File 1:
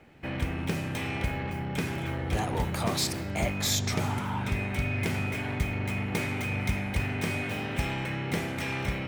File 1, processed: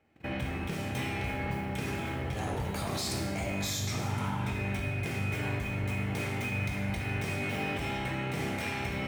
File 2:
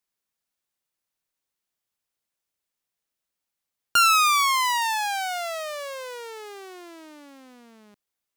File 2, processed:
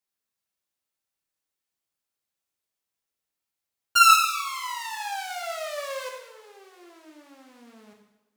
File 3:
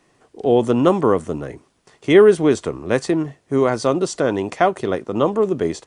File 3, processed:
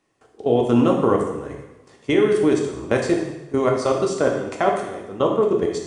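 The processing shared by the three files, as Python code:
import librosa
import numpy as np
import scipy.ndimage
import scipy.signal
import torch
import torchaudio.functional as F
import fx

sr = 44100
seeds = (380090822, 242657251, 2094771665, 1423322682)

y = fx.level_steps(x, sr, step_db=18)
y = fx.rev_double_slope(y, sr, seeds[0], early_s=0.91, late_s=3.2, knee_db=-28, drr_db=0.0)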